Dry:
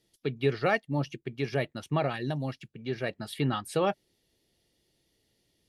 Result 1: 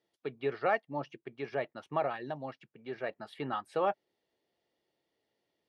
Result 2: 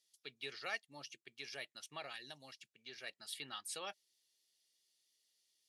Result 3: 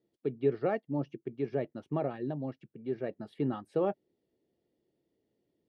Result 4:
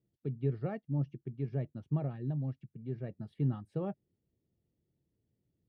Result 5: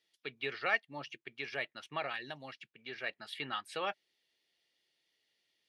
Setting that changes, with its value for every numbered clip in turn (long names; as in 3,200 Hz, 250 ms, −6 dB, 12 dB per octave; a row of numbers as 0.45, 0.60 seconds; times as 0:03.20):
resonant band-pass, frequency: 890, 6,900, 350, 120, 2,300 Hertz